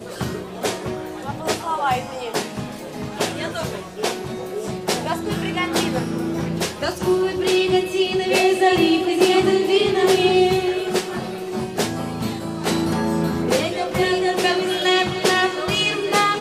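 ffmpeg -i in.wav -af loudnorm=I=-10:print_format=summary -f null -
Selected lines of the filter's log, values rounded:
Input Integrated:    -20.4 LUFS
Input True Peak:      -3.9 dBTP
Input LRA:             8.0 LU
Input Threshold:     -30.5 LUFS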